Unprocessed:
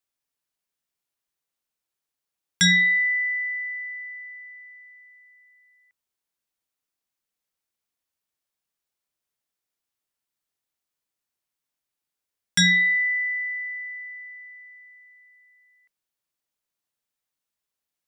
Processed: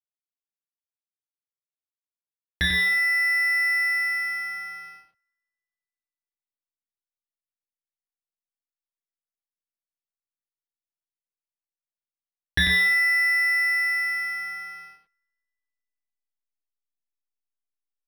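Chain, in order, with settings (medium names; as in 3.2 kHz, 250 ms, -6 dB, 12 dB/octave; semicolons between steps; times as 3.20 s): reverse; compression 6:1, threshold -32 dBFS, peak gain reduction 15.5 dB; reverse; peaking EQ 74 Hz -12 dB 0.91 oct; doubling 31 ms -9 dB; hysteresis with a dead band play -42.5 dBFS; band-passed feedback delay 170 ms, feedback 63%, band-pass 1.4 kHz, level -22 dB; in parallel at +2.5 dB: gain riding within 4 dB 2 s; on the sum: treble shelf 3 kHz +11 dB; delay 94 ms -5 dB; decimation joined by straight lines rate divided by 6×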